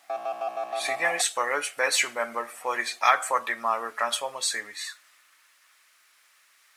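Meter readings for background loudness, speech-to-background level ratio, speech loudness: −33.0 LKFS, 6.5 dB, −26.5 LKFS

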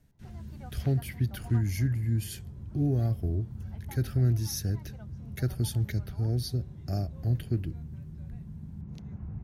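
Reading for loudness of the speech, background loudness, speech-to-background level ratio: −31.0 LKFS, −43.0 LKFS, 12.0 dB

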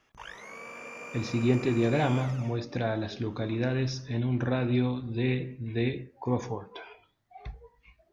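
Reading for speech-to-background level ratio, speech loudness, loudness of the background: 12.5 dB, −29.5 LKFS, −42.0 LKFS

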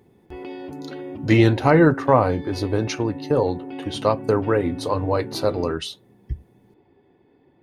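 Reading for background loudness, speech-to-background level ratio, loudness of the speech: −34.5 LKFS, 13.5 dB, −21.0 LKFS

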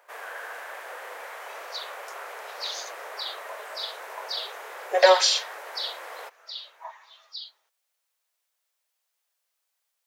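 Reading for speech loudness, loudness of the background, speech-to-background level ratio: −26.0 LKFS, −39.5 LKFS, 13.5 dB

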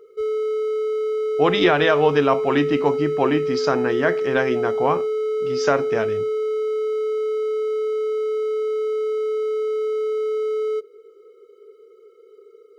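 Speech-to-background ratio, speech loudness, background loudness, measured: 2.0 dB, −21.5 LKFS, −23.5 LKFS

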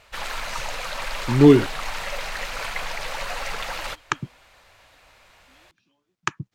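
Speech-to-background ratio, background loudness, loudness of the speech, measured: 11.5 dB, −30.5 LKFS, −19.0 LKFS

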